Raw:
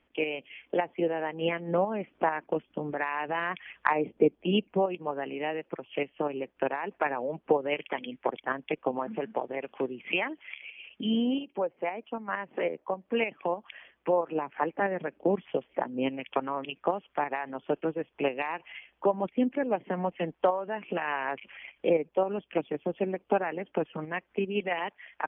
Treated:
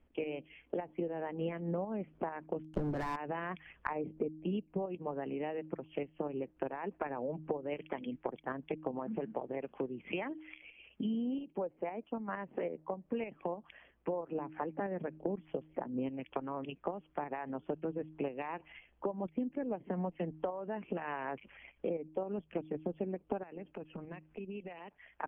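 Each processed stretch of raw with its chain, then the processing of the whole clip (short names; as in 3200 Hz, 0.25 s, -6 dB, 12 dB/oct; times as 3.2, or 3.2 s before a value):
2.63–3.16 sample leveller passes 5 + bell 2800 Hz -3.5 dB 1.5 oct
23.43–24.92 bell 2600 Hz +8.5 dB 0.24 oct + compressor 5:1, threshold -40 dBFS
whole clip: tilt -3.5 dB/oct; de-hum 156.3 Hz, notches 2; compressor 6:1, threshold -27 dBFS; gain -6 dB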